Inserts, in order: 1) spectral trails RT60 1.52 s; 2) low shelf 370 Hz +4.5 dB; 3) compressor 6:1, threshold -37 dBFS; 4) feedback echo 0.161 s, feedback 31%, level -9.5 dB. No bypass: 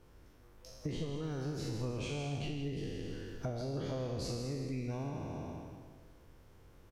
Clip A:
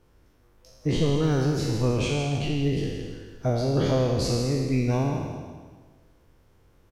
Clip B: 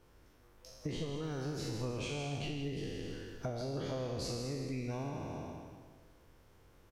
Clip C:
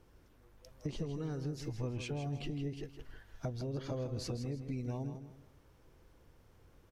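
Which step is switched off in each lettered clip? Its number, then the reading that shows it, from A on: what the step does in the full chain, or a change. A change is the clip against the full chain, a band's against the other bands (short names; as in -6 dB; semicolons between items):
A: 3, mean gain reduction 9.0 dB; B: 2, 125 Hz band -3.5 dB; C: 1, 125 Hz band +2.5 dB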